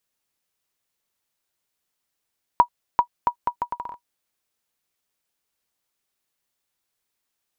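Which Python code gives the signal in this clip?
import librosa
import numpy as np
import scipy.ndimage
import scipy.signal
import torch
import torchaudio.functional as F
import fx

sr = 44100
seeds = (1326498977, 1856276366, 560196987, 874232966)

y = fx.bouncing_ball(sr, first_gap_s=0.39, ratio=0.72, hz=964.0, decay_ms=85.0, level_db=-3.5)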